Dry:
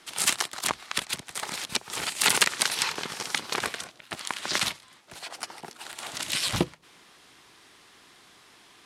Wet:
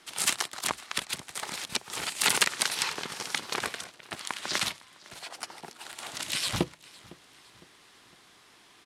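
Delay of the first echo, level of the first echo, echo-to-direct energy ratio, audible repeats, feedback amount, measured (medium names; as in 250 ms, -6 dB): 507 ms, -22.5 dB, -21.5 dB, 2, 46%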